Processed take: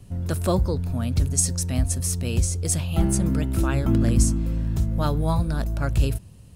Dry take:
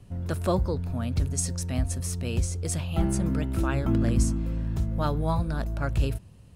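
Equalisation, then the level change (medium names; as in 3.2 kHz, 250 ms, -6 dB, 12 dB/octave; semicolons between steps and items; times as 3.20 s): bass shelf 450 Hz +4.5 dB; treble shelf 4.1 kHz +10 dB; 0.0 dB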